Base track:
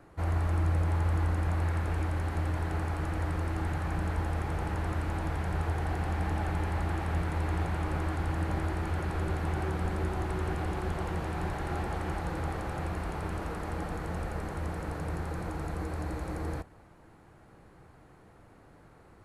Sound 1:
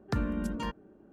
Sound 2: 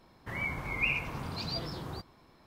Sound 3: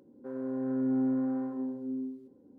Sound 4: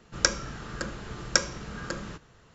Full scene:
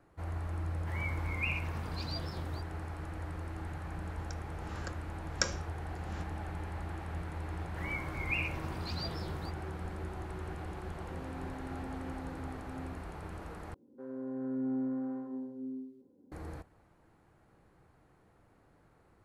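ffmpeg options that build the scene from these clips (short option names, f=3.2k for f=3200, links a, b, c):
-filter_complex "[2:a]asplit=2[a][b];[3:a]asplit=2[c][d];[0:a]volume=-9dB[e];[4:a]aeval=exprs='val(0)*pow(10,-29*(0.5-0.5*cos(2*PI*1.4*n/s))/20)':c=same[f];[c]alimiter=level_in=4.5dB:limit=-24dB:level=0:latency=1:release=71,volume=-4.5dB[g];[e]asplit=2[h][i];[h]atrim=end=13.744[j];[d]atrim=end=2.58,asetpts=PTS-STARTPTS,volume=-5.5dB[k];[i]atrim=start=16.316[l];[a]atrim=end=2.46,asetpts=PTS-STARTPTS,volume=-5.5dB,afade=t=in:d=0.004:c=hsin,afade=t=out:st=2.456:d=0.004:c=hsin,adelay=600[m];[f]atrim=end=2.54,asetpts=PTS-STARTPTS,volume=-5.5dB,afade=t=in:d=0.004:c=hsin,afade=t=out:st=2.536:d=0.004:c=hsin,adelay=4060[n];[b]atrim=end=2.46,asetpts=PTS-STARTPTS,volume=-4.5dB,afade=t=in:d=0.004:c=hsin,afade=t=out:st=2.456:d=0.004:c=hsin,adelay=7490[o];[g]atrim=end=2.58,asetpts=PTS-STARTPTS,volume=-11.5dB,afade=t=in:d=0.004:c=hsin,afade=t=out:st=2.576:d=0.004:c=hsin,adelay=10840[p];[j][k]acrossfade=d=0.004:c1=hsin:c2=hsin[q];[q][l]acrossfade=d=0.004:c1=hsin:c2=hsin[r];[r][m][n][o][p]amix=inputs=5:normalize=0"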